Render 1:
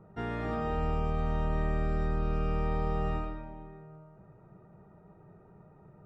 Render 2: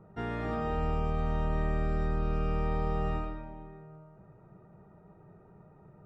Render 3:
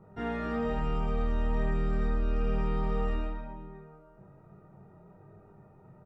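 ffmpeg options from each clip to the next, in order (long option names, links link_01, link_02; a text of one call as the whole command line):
ffmpeg -i in.wav -af anull out.wav
ffmpeg -i in.wav -filter_complex "[0:a]flanger=delay=20:depth=2.2:speed=1.1,asplit=2[link_01][link_02];[link_02]asoftclip=type=tanh:threshold=-33dB,volume=-7.5dB[link_03];[link_01][link_03]amix=inputs=2:normalize=0,asplit=2[link_04][link_05];[link_05]adelay=30,volume=-6dB[link_06];[link_04][link_06]amix=inputs=2:normalize=0" out.wav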